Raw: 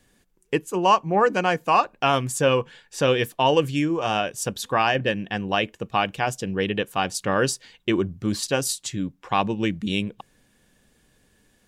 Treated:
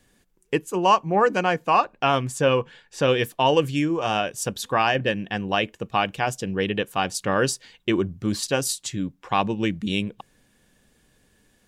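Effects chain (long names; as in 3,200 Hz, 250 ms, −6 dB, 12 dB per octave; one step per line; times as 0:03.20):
0:01.43–0:03.09: high-shelf EQ 7,200 Hz −9 dB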